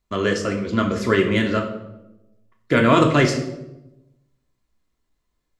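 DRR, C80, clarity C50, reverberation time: 1.5 dB, 10.5 dB, 8.5 dB, 0.95 s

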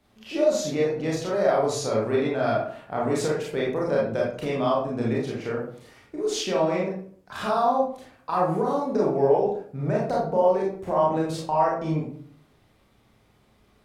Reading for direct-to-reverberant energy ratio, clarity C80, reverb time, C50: −4.5 dB, 8.0 dB, 0.55 s, 2.5 dB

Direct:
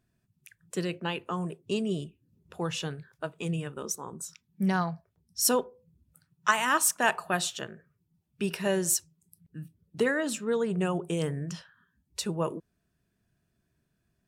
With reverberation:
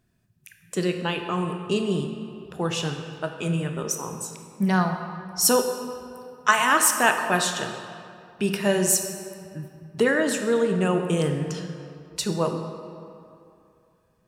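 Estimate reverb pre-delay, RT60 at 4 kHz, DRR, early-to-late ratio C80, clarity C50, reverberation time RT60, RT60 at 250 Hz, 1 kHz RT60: 21 ms, 1.6 s, 5.0 dB, 7.5 dB, 6.0 dB, 2.6 s, 2.4 s, 2.7 s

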